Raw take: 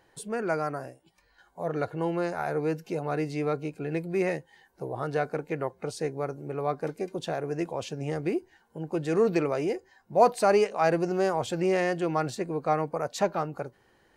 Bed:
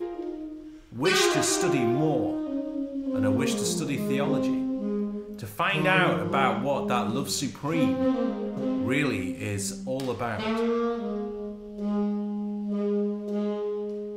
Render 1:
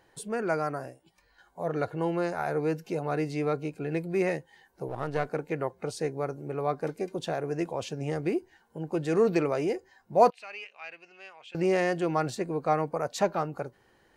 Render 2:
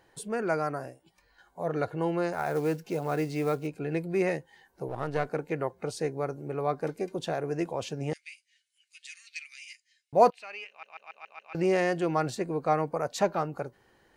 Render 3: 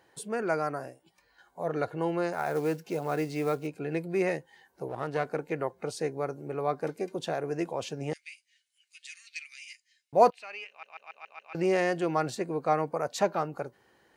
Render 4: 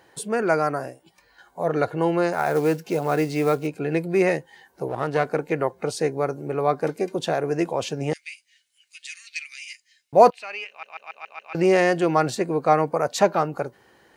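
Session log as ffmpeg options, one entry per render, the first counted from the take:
-filter_complex "[0:a]asettb=1/sr,asplit=3[s0][s1][s2];[s0]atrim=end=4.884[s3];[s1]atrim=start=4.88:end=5.29,asetpts=PTS-STARTPTS,afade=t=in:d=0.004:c=qsin,afade=t=out:st=0.406:d=0.004:c=qsin,aeval=exprs='if(lt(val(0),0),0.447*val(0),val(0))':c=same[s4];[s2]atrim=start=5.286[s5];[s3][s4]acrossfade=d=0.004:c1=hsin:c2=qsin[s6];[s6][s5]acrossfade=d=0.004:c1=qsin:c2=hsin,asettb=1/sr,asplit=3[s7][s8][s9];[s7]atrim=end=10.304[s10];[s8]atrim=start=10.3:end=11.55,asetpts=PTS-STARTPTS,afade=t=in:d=0.004:c=qsin,afade=t=out:st=1.246:d=0.004:c=qsin,bandpass=f=2600:t=q:w=5.2[s11];[s9]atrim=start=11.546[s12];[s10][s11]acrossfade=d=0.004:c1=hsin:c2=qsin[s13];[s13][s12]acrossfade=d=0.004:c1=qsin:c2=hsin"
-filter_complex "[0:a]asettb=1/sr,asplit=3[s0][s1][s2];[s0]atrim=end=2.334[s3];[s1]atrim=start=2.33:end=3.67,asetpts=PTS-STARTPTS,afade=t=in:d=0.004:c=qsin,afade=t=out:st=1.336:d=0.004:c=qsin,acrusher=bits=6:mode=log:mix=0:aa=0.000001[s4];[s2]atrim=start=3.666[s5];[s3][s4]acrossfade=d=0.004:c1=hsin:c2=qsin[s6];[s6][s5]acrossfade=d=0.004:c1=qsin:c2=hsin,asettb=1/sr,asplit=3[s7][s8][s9];[s7]atrim=end=8.134[s10];[s8]atrim=start=8.13:end=10.13,asetpts=PTS-STARTPTS,afade=t=in:d=0.004:c=qsin,afade=t=out:st=1.996:d=0.004:c=qsin,asuperpass=centerf=5000:order=12:qfactor=0.61[s11];[s9]atrim=start=10.126[s12];[s10][s11]acrossfade=d=0.004:c1=hsin:c2=qsin[s13];[s13][s12]acrossfade=d=0.004:c1=qsin:c2=hsin,asplit=7[s14][s15][s16][s17][s18][s19][s20];[s14]atrim=end=10.832[s21];[s15]atrim=start=10.688:end=10.832[s22];[s16]atrim=start=10.688:end=10.832[s23];[s17]atrim=start=10.688:end=10.832[s24];[s18]atrim=start=10.688:end=10.832[s25];[s19]atrim=start=10.688:end=10.832[s26];[s20]atrim=start=11.528[s27];[s21][s22]acrossfade=d=0.004:c1=hsin:c2=hsin[s28];[s28][s23]acrossfade=d=0.004:c1=hsin:c2=hsin[s29];[s29][s24]acrossfade=d=0.004:c1=hsin:c2=hsin[s30];[s30][s25]acrossfade=d=0.004:c1=hsin:c2=hsin[s31];[s31][s26]acrossfade=d=0.004:c1=hsin:c2=hsin[s32];[s32][s27]acrossfade=d=0.004:c1=hsin:c2=hsin"
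-af "highpass=50,lowshelf=f=120:g=-7.5"
-af "volume=2.51,alimiter=limit=0.794:level=0:latency=1"

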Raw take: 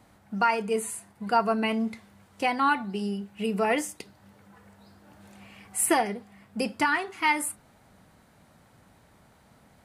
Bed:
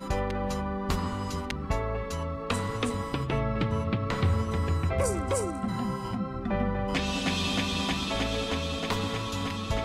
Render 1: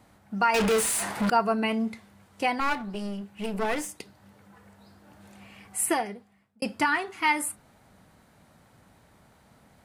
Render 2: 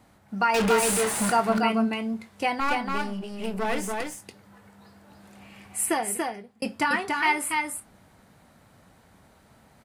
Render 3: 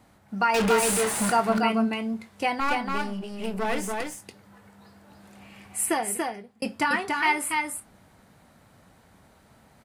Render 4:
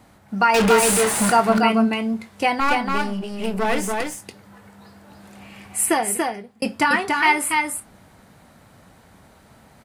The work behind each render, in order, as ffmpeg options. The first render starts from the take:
-filter_complex "[0:a]asettb=1/sr,asplit=3[s0][s1][s2];[s0]atrim=end=0.544[s3];[s1]atrim=start=0.54:end=1.3,asetpts=PTS-STARTPTS,afade=t=in:d=0.004:c=qsin,afade=t=out:st=0.756:d=0.004:c=qsin,asplit=2[s4][s5];[s5]highpass=f=720:p=1,volume=63.1,asoftclip=type=tanh:threshold=0.141[s6];[s4][s6]amix=inputs=2:normalize=0,lowpass=f=6200:p=1,volume=0.501[s7];[s2]atrim=start=1.296[s8];[s3][s7]acrossfade=d=0.004:c1=hsin:c2=qsin[s9];[s9][s8]acrossfade=d=0.004:c1=qsin:c2=hsin,asettb=1/sr,asplit=3[s10][s11][s12];[s10]atrim=end=2.604[s13];[s11]atrim=start=2.6:end=3.95,asetpts=PTS-STARTPTS,afade=t=in:d=0.004:c=qsin,afade=t=out:st=1.346:d=0.004:c=qsin,aeval=exprs='clip(val(0),-1,0.0188)':c=same[s14];[s12]atrim=start=3.946[s15];[s13][s14]acrossfade=d=0.004:c1=hsin:c2=qsin[s16];[s16][s15]acrossfade=d=0.004:c1=qsin:c2=hsin,asplit=2[s17][s18];[s17]atrim=end=6.62,asetpts=PTS-STARTPTS,afade=t=out:st=5.65:d=0.97[s19];[s18]atrim=start=6.62,asetpts=PTS-STARTPTS,afade=t=in:d=0.004:c=hsin[s20];[s19][s20]concat=n=2:v=0:a=1"
-filter_complex "[0:a]asplit=2[s0][s1];[s1]adelay=22,volume=0.224[s2];[s0][s2]amix=inputs=2:normalize=0,aecho=1:1:285:0.668"
-af anull
-af "volume=2"

